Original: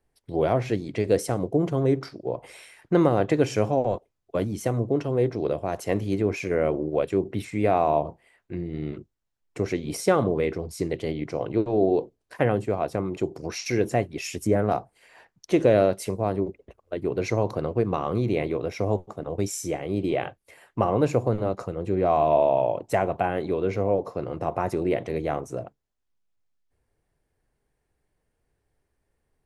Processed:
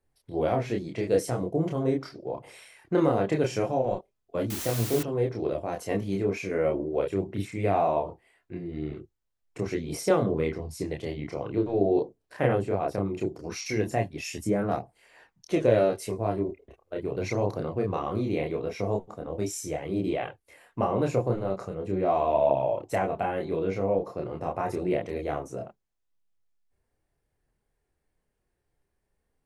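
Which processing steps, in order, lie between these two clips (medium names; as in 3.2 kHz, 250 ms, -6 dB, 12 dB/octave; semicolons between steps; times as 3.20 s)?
chorus voices 2, 0.2 Hz, delay 28 ms, depth 3.2 ms; 4.50–5.03 s: word length cut 6-bit, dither triangular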